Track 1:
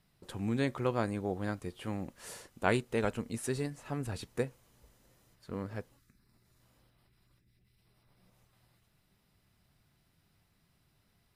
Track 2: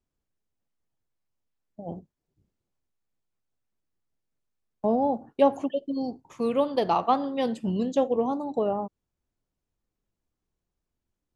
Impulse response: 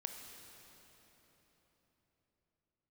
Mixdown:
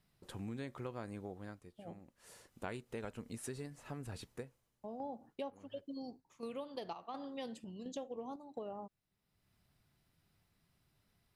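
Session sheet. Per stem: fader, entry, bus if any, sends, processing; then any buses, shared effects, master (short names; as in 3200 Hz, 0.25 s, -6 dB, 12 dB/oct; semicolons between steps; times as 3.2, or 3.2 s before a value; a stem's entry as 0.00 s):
-4.5 dB, 0.00 s, no send, auto duck -15 dB, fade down 0.65 s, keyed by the second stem
-13.5 dB, 0.00 s, no send, high shelf 2200 Hz +8.5 dB; chopper 1.4 Hz, depth 60%, duty 70%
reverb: off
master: compressor 4:1, threshold -41 dBFS, peak gain reduction 12 dB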